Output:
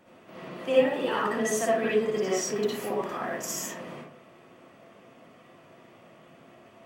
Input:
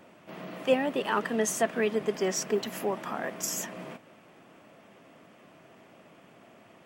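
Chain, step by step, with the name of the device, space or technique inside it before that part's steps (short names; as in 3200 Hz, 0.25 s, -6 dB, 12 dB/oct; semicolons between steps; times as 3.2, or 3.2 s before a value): bathroom (reverb RT60 0.55 s, pre-delay 54 ms, DRR -6 dB); gain -5.5 dB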